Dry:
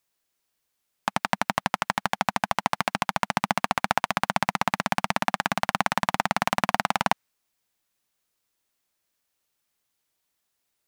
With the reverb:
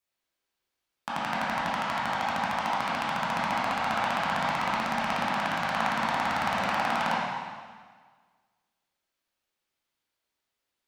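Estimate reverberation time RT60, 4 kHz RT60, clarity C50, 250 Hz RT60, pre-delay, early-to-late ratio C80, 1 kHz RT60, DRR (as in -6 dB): 1.6 s, 1.5 s, -2.5 dB, 1.5 s, 6 ms, 0.5 dB, 1.6 s, -8.5 dB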